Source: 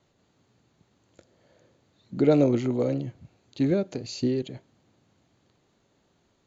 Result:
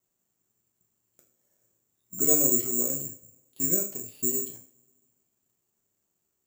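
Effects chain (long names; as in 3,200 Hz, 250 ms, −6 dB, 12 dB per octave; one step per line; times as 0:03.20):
mu-law and A-law mismatch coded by A
coupled-rooms reverb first 0.37 s, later 1.6 s, from −26 dB, DRR 0 dB
bad sample-rate conversion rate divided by 6×, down filtered, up zero stuff
level −11.5 dB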